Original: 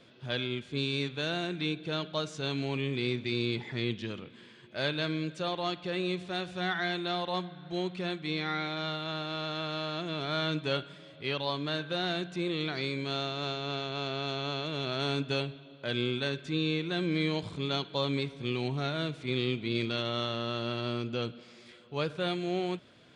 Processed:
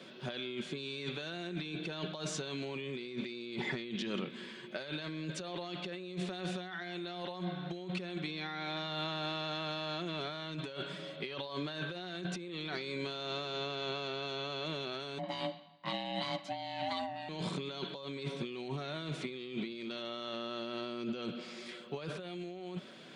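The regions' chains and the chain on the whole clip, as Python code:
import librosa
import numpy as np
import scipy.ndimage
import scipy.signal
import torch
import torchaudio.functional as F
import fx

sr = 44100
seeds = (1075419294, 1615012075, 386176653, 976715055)

y = fx.chain(x, sr, fx.ring_mod(carrier_hz=440.0),
    fx.band_widen(depth_pct=100), at=(15.18, 17.29))
y = scipy.signal.sosfilt(scipy.signal.butter(4, 160.0, 'highpass', fs=sr, output='sos'), y)
y = y + 0.34 * np.pad(y, (int(5.3 * sr / 1000.0), 0))[:len(y)]
y = fx.over_compress(y, sr, threshold_db=-40.0, ratio=-1.0)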